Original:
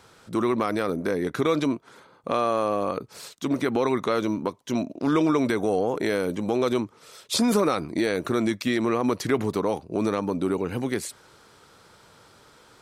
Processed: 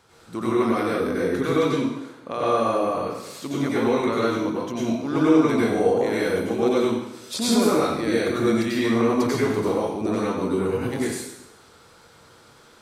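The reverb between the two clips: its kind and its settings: plate-style reverb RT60 0.84 s, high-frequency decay 0.95×, pre-delay 80 ms, DRR -7 dB; trim -5.5 dB

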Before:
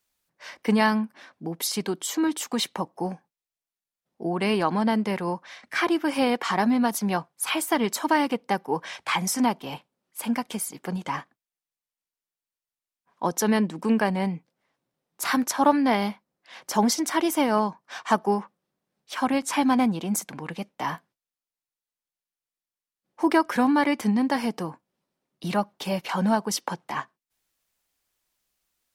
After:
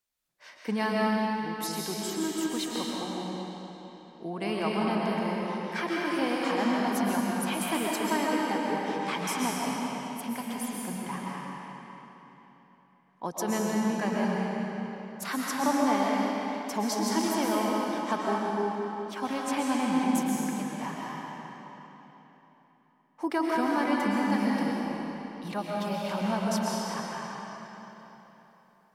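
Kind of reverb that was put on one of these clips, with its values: algorithmic reverb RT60 3.7 s, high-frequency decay 0.85×, pre-delay 90 ms, DRR -4 dB; trim -9 dB

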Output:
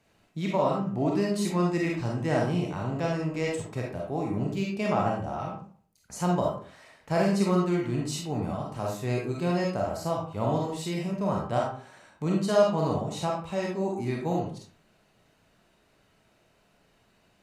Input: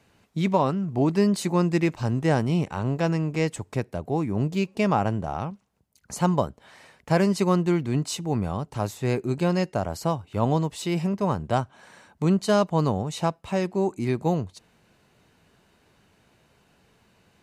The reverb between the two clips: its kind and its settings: algorithmic reverb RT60 0.47 s, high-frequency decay 0.65×, pre-delay 5 ms, DRR -2.5 dB; trim -7 dB

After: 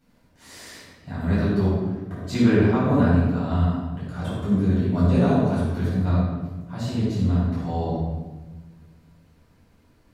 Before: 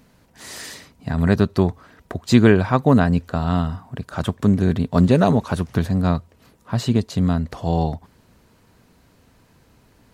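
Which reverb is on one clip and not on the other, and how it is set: simulated room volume 810 m³, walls mixed, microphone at 7.5 m; trim -19 dB

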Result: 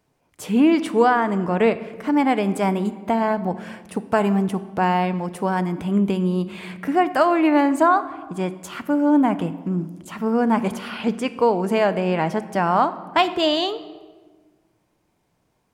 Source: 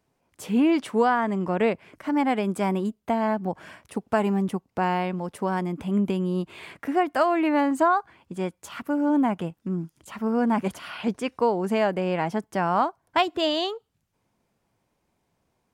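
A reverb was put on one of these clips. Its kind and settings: simulated room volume 1300 m³, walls mixed, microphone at 0.45 m; trim +4 dB

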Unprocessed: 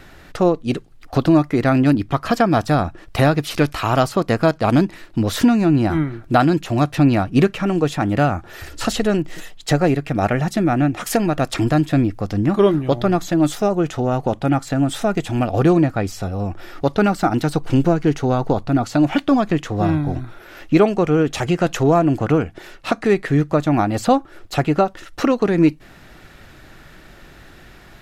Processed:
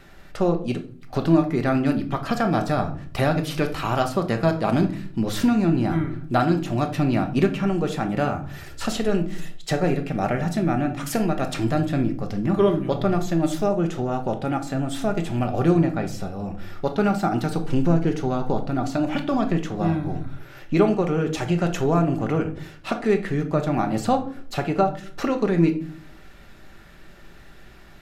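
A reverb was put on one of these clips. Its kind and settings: simulated room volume 530 m³, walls furnished, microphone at 1.2 m; trim -6.5 dB

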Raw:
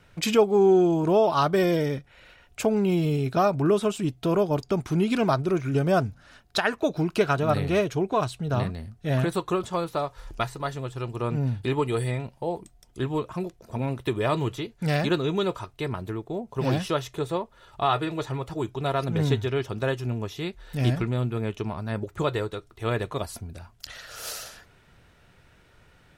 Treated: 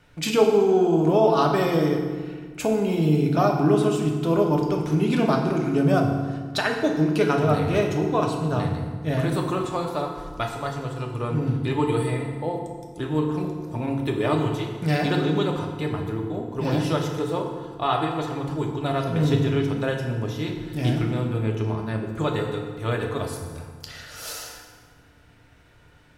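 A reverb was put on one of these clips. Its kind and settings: FDN reverb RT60 1.6 s, low-frequency decay 1.4×, high-frequency decay 0.7×, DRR 1 dB; trim -1 dB

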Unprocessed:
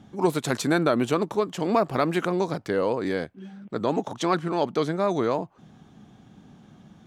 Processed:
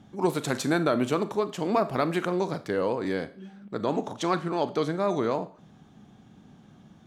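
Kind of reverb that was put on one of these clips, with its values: Schroeder reverb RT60 0.42 s, combs from 28 ms, DRR 12.5 dB; trim -2.5 dB

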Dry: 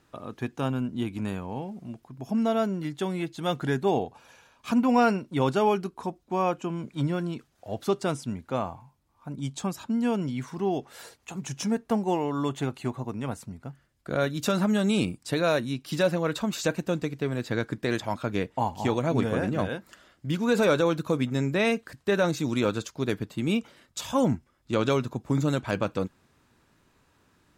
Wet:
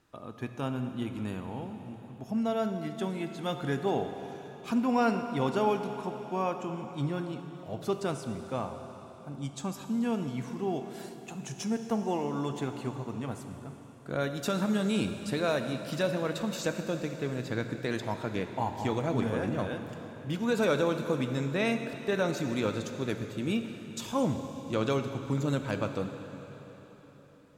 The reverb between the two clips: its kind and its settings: plate-style reverb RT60 4.2 s, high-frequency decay 0.95×, DRR 6.5 dB; trim -5 dB

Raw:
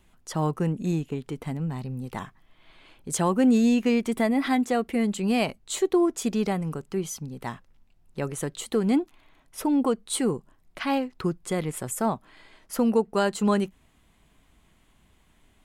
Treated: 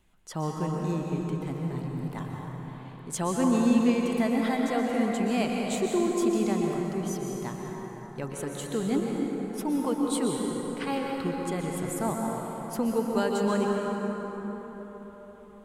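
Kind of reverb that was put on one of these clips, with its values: plate-style reverb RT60 4.7 s, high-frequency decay 0.45×, pre-delay 110 ms, DRR -1 dB; trim -5.5 dB

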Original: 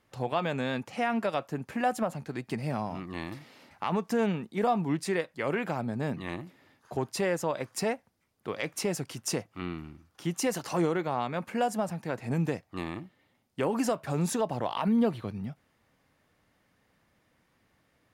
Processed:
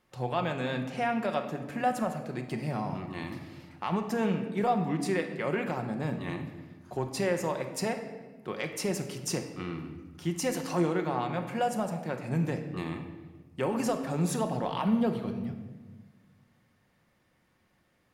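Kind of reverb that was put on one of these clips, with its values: simulated room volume 1100 m³, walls mixed, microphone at 0.95 m; trim -2 dB

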